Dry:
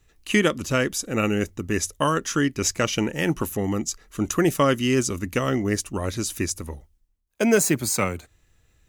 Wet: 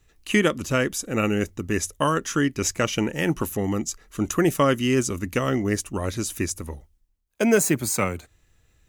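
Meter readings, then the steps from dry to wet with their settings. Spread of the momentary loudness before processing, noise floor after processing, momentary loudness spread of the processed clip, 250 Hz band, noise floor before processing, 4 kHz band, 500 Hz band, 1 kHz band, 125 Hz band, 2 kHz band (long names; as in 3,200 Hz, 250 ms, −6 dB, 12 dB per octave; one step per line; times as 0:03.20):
8 LU, −65 dBFS, 9 LU, 0.0 dB, −65 dBFS, −2.0 dB, 0.0 dB, 0.0 dB, 0.0 dB, −0.5 dB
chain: dynamic equaliser 4,600 Hz, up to −4 dB, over −39 dBFS, Q 1.6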